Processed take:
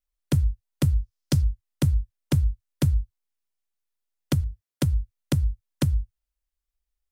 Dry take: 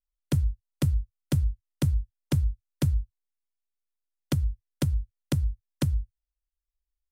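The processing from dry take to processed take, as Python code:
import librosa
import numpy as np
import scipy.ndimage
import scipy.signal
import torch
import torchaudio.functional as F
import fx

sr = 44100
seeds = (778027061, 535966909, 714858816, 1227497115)

y = fx.peak_eq(x, sr, hz=5200.0, db=9.0, octaves=0.78, at=(0.99, 1.42))
y = fx.highpass(y, sr, hz=73.0, slope=12, at=(4.41, 4.86))
y = F.gain(torch.from_numpy(y), 3.0).numpy()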